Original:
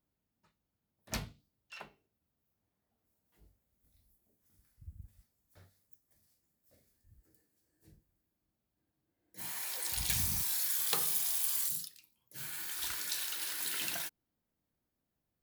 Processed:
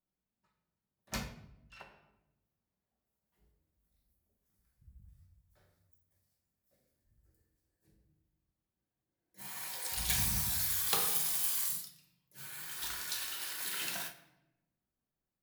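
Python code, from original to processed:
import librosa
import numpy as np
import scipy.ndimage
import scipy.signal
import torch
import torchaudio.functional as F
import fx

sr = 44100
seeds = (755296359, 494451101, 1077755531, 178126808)

y = fx.peak_eq(x, sr, hz=1100.0, db=3.0, octaves=1.6)
y = fx.room_shoebox(y, sr, seeds[0], volume_m3=360.0, walls='mixed', distance_m=1.1)
y = fx.upward_expand(y, sr, threshold_db=-47.0, expansion=1.5)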